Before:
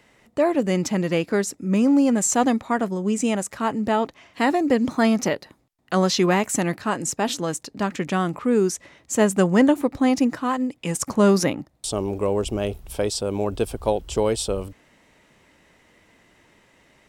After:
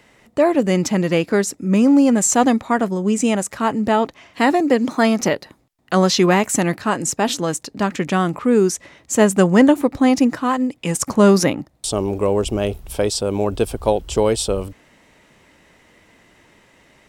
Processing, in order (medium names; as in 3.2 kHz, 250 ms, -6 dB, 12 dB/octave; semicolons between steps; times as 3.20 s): 4.60–5.21 s: high-pass 220 Hz; trim +4.5 dB